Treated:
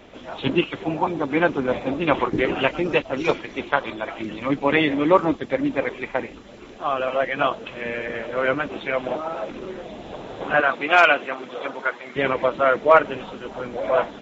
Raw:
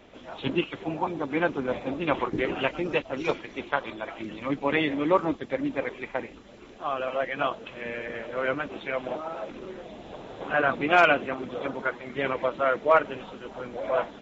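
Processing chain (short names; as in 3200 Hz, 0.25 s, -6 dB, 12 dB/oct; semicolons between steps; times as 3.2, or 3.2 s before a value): 10.6–12.16 HPF 700 Hz 6 dB/oct; gain +6 dB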